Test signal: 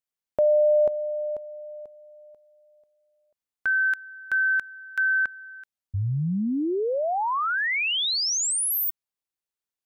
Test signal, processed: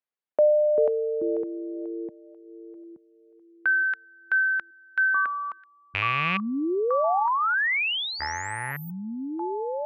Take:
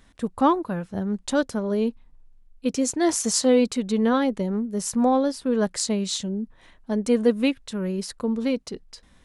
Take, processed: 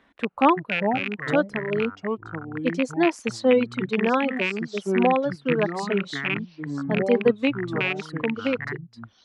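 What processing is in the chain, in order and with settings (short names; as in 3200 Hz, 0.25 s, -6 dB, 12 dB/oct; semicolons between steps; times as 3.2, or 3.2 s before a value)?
rattling part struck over -28 dBFS, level -12 dBFS; HPF 41 Hz; three-band isolator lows -16 dB, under 220 Hz, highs -23 dB, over 3300 Hz; echoes that change speed 0.263 s, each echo -5 st, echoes 2, each echo -6 dB; reverb removal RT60 1.3 s; gain +2 dB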